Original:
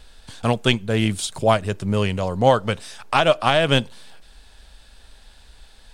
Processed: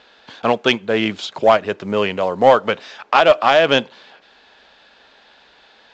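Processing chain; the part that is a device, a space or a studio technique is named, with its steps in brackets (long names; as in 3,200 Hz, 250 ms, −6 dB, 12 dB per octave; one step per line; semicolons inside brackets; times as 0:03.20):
telephone (band-pass filter 320–3,100 Hz; soft clipping −8 dBFS, distortion −17 dB; level +7 dB; mu-law 128 kbit/s 16,000 Hz)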